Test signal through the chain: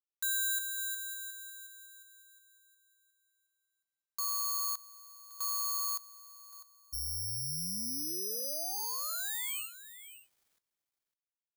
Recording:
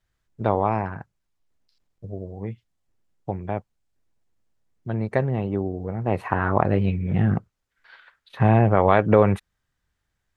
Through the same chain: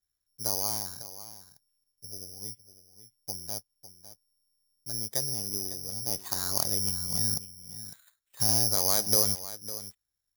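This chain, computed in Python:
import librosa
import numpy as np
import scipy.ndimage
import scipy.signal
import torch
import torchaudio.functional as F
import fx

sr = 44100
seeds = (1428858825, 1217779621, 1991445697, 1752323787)

y = fx.block_float(x, sr, bits=5)
y = y + 10.0 ** (-14.0 / 20.0) * np.pad(y, (int(553 * sr / 1000.0), 0))[:len(y)]
y = (np.kron(scipy.signal.resample_poly(y, 1, 8), np.eye(8)[0]) * 8)[:len(y)]
y = y * 10.0 ** (-17.5 / 20.0)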